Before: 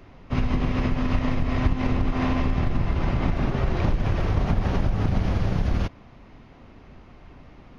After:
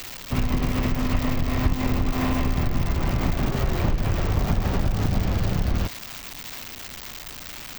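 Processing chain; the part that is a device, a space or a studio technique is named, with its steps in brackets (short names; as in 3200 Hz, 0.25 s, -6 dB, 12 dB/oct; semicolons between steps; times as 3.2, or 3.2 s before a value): budget class-D amplifier (switching dead time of 0.053 ms; switching spikes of -18.5 dBFS)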